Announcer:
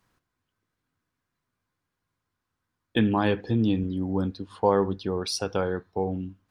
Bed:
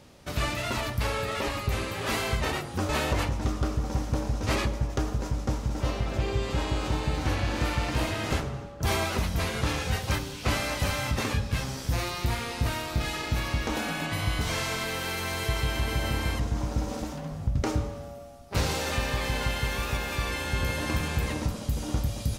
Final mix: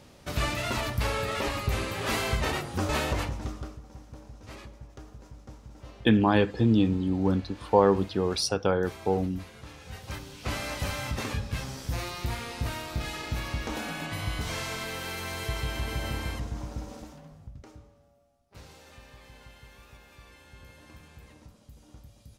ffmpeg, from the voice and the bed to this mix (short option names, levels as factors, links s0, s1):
-filter_complex "[0:a]adelay=3100,volume=1.19[s0];[1:a]volume=5.01,afade=t=out:st=2.9:d=0.91:silence=0.125893,afade=t=in:st=9.79:d=0.91:silence=0.199526,afade=t=out:st=16.11:d=1.55:silence=0.11885[s1];[s0][s1]amix=inputs=2:normalize=0"